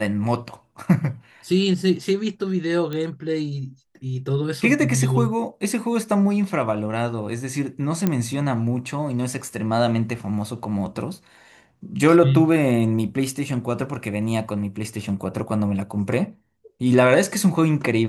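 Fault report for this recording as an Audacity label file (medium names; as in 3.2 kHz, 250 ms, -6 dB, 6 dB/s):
2.930000	2.930000	pop -17 dBFS
8.070000	8.070000	pop -8 dBFS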